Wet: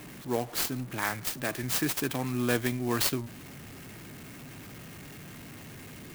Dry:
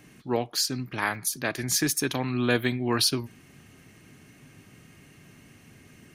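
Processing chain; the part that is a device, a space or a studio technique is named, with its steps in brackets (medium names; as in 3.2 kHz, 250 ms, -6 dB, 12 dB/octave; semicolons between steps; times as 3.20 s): early CD player with a faulty converter (jump at every zero crossing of -37.5 dBFS; sampling jitter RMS 0.049 ms); trim -4 dB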